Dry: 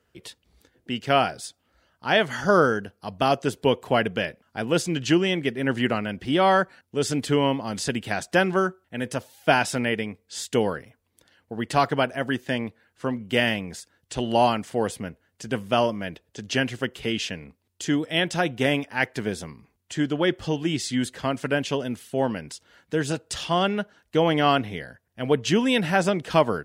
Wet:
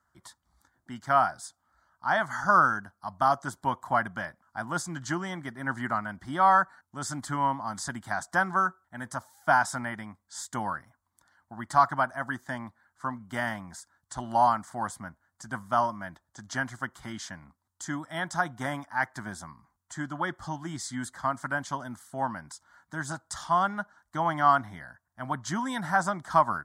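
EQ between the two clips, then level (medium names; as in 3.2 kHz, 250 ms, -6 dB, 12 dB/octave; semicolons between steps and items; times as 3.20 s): peaking EQ 1.1 kHz +11.5 dB 1.7 oct; peaking EQ 7.4 kHz +5.5 dB 0.75 oct; static phaser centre 1.1 kHz, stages 4; -7.5 dB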